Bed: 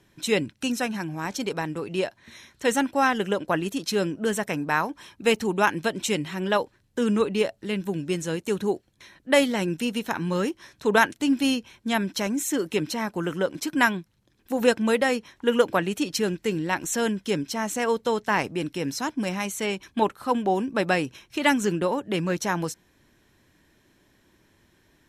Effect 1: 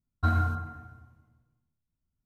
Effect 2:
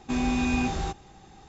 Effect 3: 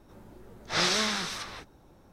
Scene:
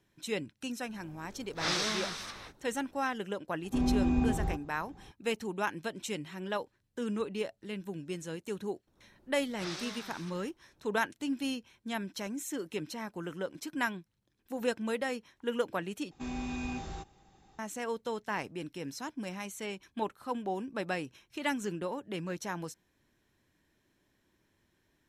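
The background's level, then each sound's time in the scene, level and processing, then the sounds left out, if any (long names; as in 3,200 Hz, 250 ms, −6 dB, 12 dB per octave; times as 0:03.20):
bed −11.5 dB
0:00.88: mix in 3 −5.5 dB
0:03.64: mix in 2 −10.5 dB + tilt shelving filter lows +9.5 dB, about 1,300 Hz
0:08.87: mix in 3 −15.5 dB
0:16.11: overwrite with 2 −11.5 dB
not used: 1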